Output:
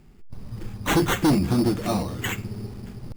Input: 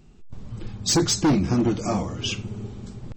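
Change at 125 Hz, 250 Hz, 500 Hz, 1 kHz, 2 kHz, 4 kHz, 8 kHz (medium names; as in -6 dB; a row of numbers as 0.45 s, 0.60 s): 0.0 dB, 0.0 dB, +0.5 dB, +2.5 dB, +6.0 dB, -5.0 dB, -8.5 dB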